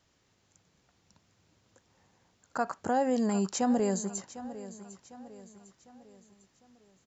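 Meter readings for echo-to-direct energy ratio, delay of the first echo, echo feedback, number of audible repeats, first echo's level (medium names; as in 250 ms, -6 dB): -14.0 dB, 752 ms, 45%, 3, -15.0 dB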